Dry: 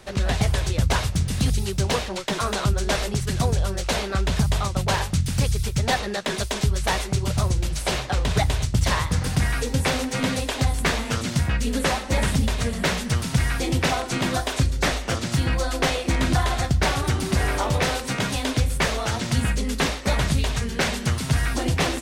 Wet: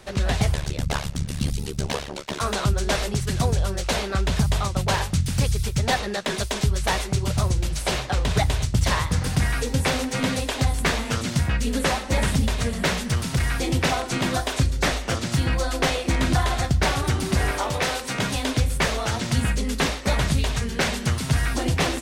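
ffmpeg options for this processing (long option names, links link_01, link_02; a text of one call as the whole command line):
ffmpeg -i in.wav -filter_complex "[0:a]asettb=1/sr,asplit=3[link_01][link_02][link_03];[link_01]atrim=end=0.544[link_04];[link_02]atrim=start=0.54:end=2.41,asetpts=PTS-STARTPTS,afade=type=in:duration=0.004:curve=qsin,afade=type=out:start_time=1.866:duration=0.004:curve=qsin,tremolo=f=72:d=1[link_05];[link_03]atrim=start=2.406[link_06];[link_04][link_05]acrossfade=duration=0.004:curve1=hsin:curve2=qsin[link_07];[link_07][link_06]acrossfade=duration=0.004:curve1=qsin:curve2=hsin,asettb=1/sr,asplit=3[link_08][link_09][link_10];[link_08]atrim=end=12.954[link_11];[link_09]atrim=start=12.95:end=13.53,asetpts=PTS-STARTPTS,afade=type=in:duration=0.004:curve=qsin,afade=type=out:start_time=0.576:duration=0.004:curve=qsin,volume=16.5dB,asoftclip=hard,volume=-16.5dB[link_12];[link_10]atrim=start=13.526[link_13];[link_11][link_12]acrossfade=duration=0.004:curve1=hsin:curve2=qsin[link_14];[link_14][link_13]acrossfade=duration=0.004:curve1=qsin:curve2=hsin,asettb=1/sr,asplit=3[link_15][link_16][link_17];[link_15]atrim=end=17.514[link_18];[link_16]atrim=start=17.51:end=18.15,asetpts=PTS-STARTPTS,afade=type=in:duration=0.004:curve=qsin,afade=type=out:start_time=0.636:duration=0.004:curve=qsin,lowshelf=frequency=280:gain=-7.5[link_19];[link_17]atrim=start=18.146[link_20];[link_18][link_19]acrossfade=duration=0.004:curve1=hsin:curve2=qsin[link_21];[link_21][link_20]acrossfade=duration=0.004:curve1=qsin:curve2=hsin" out.wav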